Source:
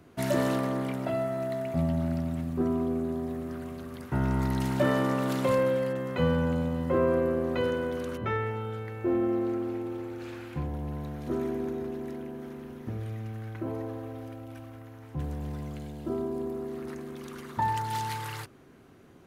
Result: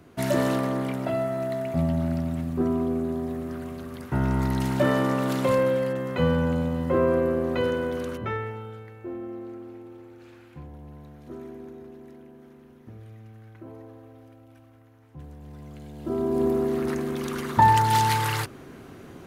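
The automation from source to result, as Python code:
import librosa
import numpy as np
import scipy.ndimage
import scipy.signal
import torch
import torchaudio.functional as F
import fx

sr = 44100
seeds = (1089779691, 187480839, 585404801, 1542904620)

y = fx.gain(x, sr, db=fx.line((8.04, 3.0), (9.15, -9.0), (15.4, -9.0), (15.91, -1.5), (16.45, 11.0)))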